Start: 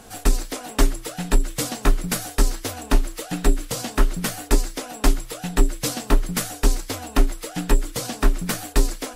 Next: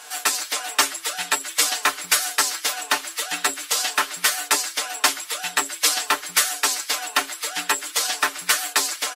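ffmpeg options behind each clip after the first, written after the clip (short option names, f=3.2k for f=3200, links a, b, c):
-af "highpass=1.2k,highshelf=f=9.1k:g=-5,aecho=1:1:6.7:0.69,volume=8.5dB"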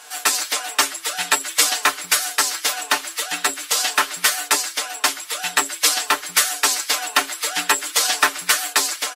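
-af "dynaudnorm=f=100:g=5:m=11.5dB,volume=-1dB"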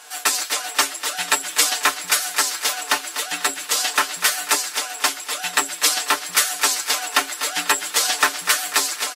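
-af "aecho=1:1:246|492|738|984:0.251|0.103|0.0422|0.0173,volume=-1dB"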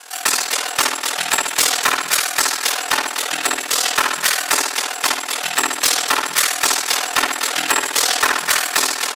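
-filter_complex "[0:a]asplit=2[a][b];[b]adelay=64,lowpass=f=4.4k:p=1,volume=-3dB,asplit=2[c][d];[d]adelay=64,lowpass=f=4.4k:p=1,volume=0.52,asplit=2[e][f];[f]adelay=64,lowpass=f=4.4k:p=1,volume=0.52,asplit=2[g][h];[h]adelay=64,lowpass=f=4.4k:p=1,volume=0.52,asplit=2[i][j];[j]adelay=64,lowpass=f=4.4k:p=1,volume=0.52,asplit=2[k][l];[l]adelay=64,lowpass=f=4.4k:p=1,volume=0.52,asplit=2[m][n];[n]adelay=64,lowpass=f=4.4k:p=1,volume=0.52[o];[a][c][e][g][i][k][m][o]amix=inputs=8:normalize=0,aeval=exprs='val(0)*sin(2*PI*20*n/s)':c=same,aeval=exprs='0.75*sin(PI/2*2.24*val(0)/0.75)':c=same,volume=-5dB"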